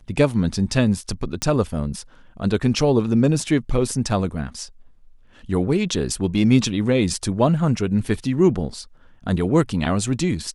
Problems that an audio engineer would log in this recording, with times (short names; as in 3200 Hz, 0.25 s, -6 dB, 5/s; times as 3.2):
1.42 pop -9 dBFS